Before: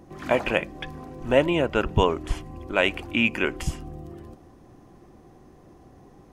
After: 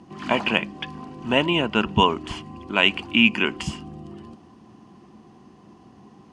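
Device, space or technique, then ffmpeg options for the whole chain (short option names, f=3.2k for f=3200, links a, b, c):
car door speaker: -af "highpass=100,equalizer=f=210:t=q:w=4:g=10,equalizer=f=540:t=q:w=4:g=-7,equalizer=f=1k:t=q:w=4:g=7,equalizer=f=2.9k:t=q:w=4:g=10,equalizer=f=4.6k:t=q:w=4:g=6,lowpass=f=9.1k:w=0.5412,lowpass=f=9.1k:w=1.3066"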